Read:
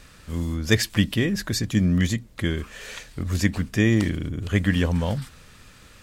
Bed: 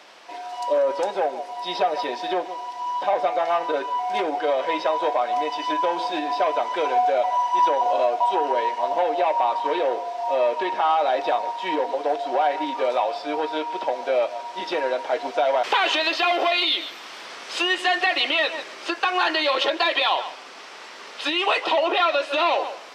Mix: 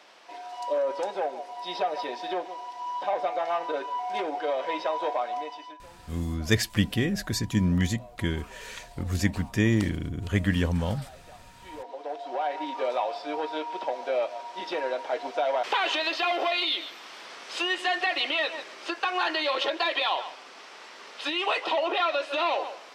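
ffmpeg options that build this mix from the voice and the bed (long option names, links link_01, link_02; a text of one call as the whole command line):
ffmpeg -i stem1.wav -i stem2.wav -filter_complex "[0:a]adelay=5800,volume=-3.5dB[link_01];[1:a]volume=16.5dB,afade=type=out:start_time=5.19:duration=0.6:silence=0.0794328,afade=type=in:start_time=11.51:duration=1.31:silence=0.0749894[link_02];[link_01][link_02]amix=inputs=2:normalize=0" out.wav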